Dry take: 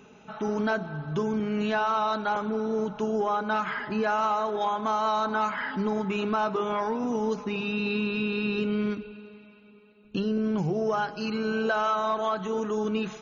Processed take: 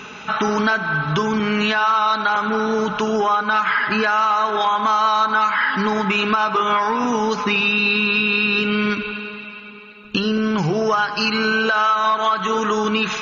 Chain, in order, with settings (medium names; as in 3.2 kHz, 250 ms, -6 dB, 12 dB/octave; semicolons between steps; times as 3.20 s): high-order bell 2.4 kHz +11.5 dB 2.9 oct; feedback echo behind a band-pass 83 ms, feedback 74%, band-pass 1.6 kHz, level -15 dB; compression 4:1, threshold -28 dBFS, peak gain reduction 13.5 dB; loudness maximiser +19 dB; trim -7.5 dB